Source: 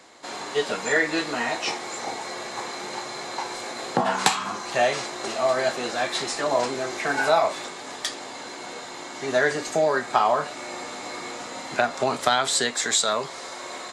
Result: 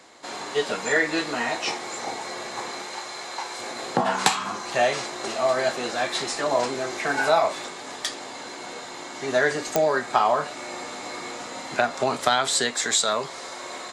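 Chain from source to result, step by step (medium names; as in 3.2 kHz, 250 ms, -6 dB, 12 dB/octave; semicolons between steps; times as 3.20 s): 2.82–3.59 s: bass shelf 400 Hz -10.5 dB; clicks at 9.76 s, -5 dBFS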